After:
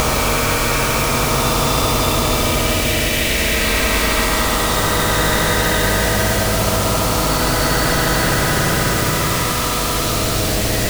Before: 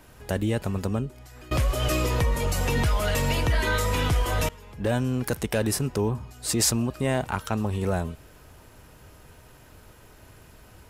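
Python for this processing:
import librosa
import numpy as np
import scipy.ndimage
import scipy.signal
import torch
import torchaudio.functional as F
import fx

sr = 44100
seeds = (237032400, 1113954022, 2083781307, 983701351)

p1 = fx.spec_dropout(x, sr, seeds[0], share_pct=70)
p2 = fx.riaa(p1, sr, side='playback')
p3 = fx.formant_shift(p2, sr, semitones=4)
p4 = p3 + fx.echo_bbd(p3, sr, ms=238, stages=1024, feedback_pct=57, wet_db=-21.5, dry=0)
p5 = fx.level_steps(p4, sr, step_db=11)
p6 = fx.paulstretch(p5, sr, seeds[1], factor=9.0, window_s=0.25, from_s=3.15)
p7 = fx.quant_dither(p6, sr, seeds[2], bits=6, dither='triangular')
p8 = p6 + (p7 * 10.0 ** (-4.0 / 20.0))
p9 = fx.high_shelf(p8, sr, hz=9600.0, db=-8.5)
p10 = fx.spectral_comp(p9, sr, ratio=4.0)
y = p10 * 10.0 ** (-1.0 / 20.0)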